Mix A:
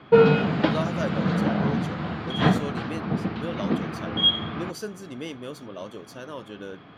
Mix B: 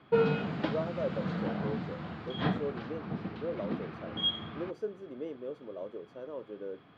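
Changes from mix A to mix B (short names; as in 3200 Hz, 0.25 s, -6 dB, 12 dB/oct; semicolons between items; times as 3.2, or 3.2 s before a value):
speech: add band-pass 460 Hz, Q 2; background -10.5 dB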